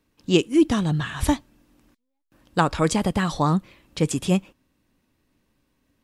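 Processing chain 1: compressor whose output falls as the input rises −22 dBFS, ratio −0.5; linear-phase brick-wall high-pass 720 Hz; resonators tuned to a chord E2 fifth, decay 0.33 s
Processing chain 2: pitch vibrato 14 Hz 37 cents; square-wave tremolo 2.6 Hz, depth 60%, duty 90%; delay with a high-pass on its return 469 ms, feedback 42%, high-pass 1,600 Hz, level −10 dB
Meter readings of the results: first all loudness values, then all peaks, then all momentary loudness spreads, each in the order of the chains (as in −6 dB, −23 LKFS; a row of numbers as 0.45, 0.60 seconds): −42.5, −23.5 LKFS; −23.5, −4.5 dBFS; 11, 18 LU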